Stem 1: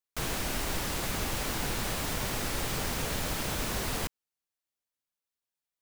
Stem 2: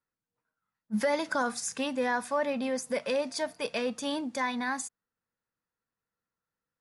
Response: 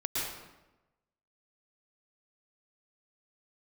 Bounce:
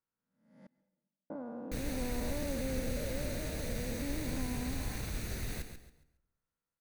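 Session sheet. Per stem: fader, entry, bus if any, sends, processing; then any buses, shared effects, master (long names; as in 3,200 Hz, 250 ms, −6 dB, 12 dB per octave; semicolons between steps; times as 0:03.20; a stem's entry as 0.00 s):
−10.0 dB, 1.55 s, send −23 dB, echo send −8.5 dB, lower of the sound and its delayed copy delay 0.48 ms; low-shelf EQ 170 Hz +9 dB
−2.0 dB, 0.00 s, muted 0:00.67–0:01.30, send −23.5 dB, no echo send, spectrum smeared in time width 499 ms; treble cut that deepens with the level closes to 580 Hz, closed at −36 dBFS; high-shelf EQ 3,100 Hz −9 dB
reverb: on, RT60 1.0 s, pre-delay 104 ms
echo: repeating echo 138 ms, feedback 29%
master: no processing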